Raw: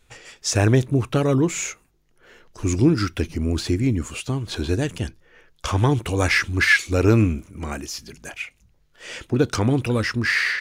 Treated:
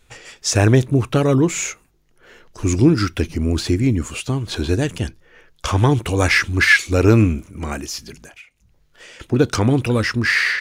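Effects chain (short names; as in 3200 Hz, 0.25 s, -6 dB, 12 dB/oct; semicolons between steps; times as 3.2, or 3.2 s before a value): 8.18–9.2 compressor 12:1, threshold -43 dBFS, peak gain reduction 17.5 dB; gain +3.5 dB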